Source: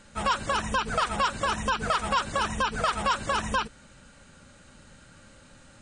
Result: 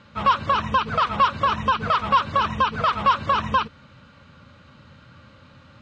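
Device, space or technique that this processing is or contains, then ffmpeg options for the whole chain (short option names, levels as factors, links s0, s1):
guitar cabinet: -af "highpass=86,equalizer=f=86:t=q:w=4:g=9,equalizer=f=130:t=q:w=4:g=6,equalizer=f=370:t=q:w=4:g=-4,equalizer=f=760:t=q:w=4:g=-5,equalizer=f=1100:t=q:w=4:g=7,equalizer=f=1700:t=q:w=4:g=-4,lowpass=f=4300:w=0.5412,lowpass=f=4300:w=1.3066,volume=1.5"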